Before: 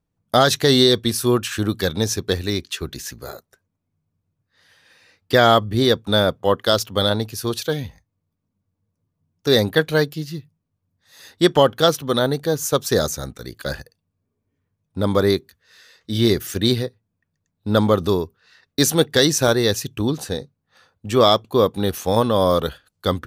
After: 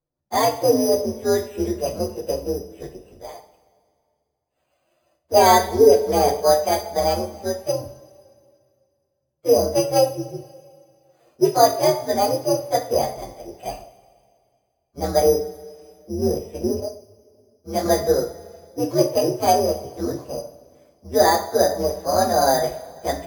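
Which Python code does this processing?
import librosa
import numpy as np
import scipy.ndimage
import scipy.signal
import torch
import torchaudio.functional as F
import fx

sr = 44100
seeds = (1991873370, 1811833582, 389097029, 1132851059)

y = fx.partial_stretch(x, sr, pct=128)
y = fx.peak_eq(y, sr, hz=600.0, db=14.5, octaves=2.1)
y = np.repeat(scipy.signal.resample_poly(y, 1, 8), 8)[:len(y)]
y = fx.small_body(y, sr, hz=(430.0, 1600.0, 3900.0), ring_ms=90, db=15, at=(5.37, 6.46))
y = fx.rev_double_slope(y, sr, seeds[0], early_s=0.4, late_s=2.2, knee_db=-18, drr_db=2.0)
y = fx.detune_double(y, sr, cents=54, at=(16.8, 17.86))
y = y * 10.0 ** (-11.0 / 20.0)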